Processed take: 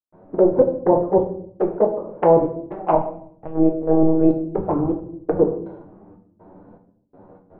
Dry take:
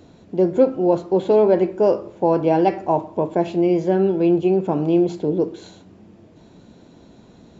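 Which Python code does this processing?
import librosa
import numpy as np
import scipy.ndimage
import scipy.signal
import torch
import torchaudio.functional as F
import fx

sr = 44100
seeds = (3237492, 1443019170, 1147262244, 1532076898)

y = fx.octave_divider(x, sr, octaves=1, level_db=-4.0)
y = scipy.signal.sosfilt(scipy.signal.butter(4, 1200.0, 'lowpass', fs=sr, output='sos'), y)
y = fx.step_gate(y, sr, bpm=122, pattern='.xxxx..xxx...xx', floor_db=-60.0, edge_ms=4.5)
y = fx.env_flanger(y, sr, rest_ms=11.8, full_db=-13.5)
y = fx.peak_eq(y, sr, hz=94.0, db=-5.0, octaves=2.6)
y = fx.lpc_monotone(y, sr, seeds[0], pitch_hz=160.0, order=8, at=(2.95, 4.31))
y = fx.low_shelf(y, sr, hz=230.0, db=-12.0)
y = fx.room_shoebox(y, sr, seeds[1], volume_m3=110.0, walls='mixed', distance_m=0.53)
y = fx.rider(y, sr, range_db=5, speed_s=2.0)
y = y * 10.0 ** (6.0 / 20.0)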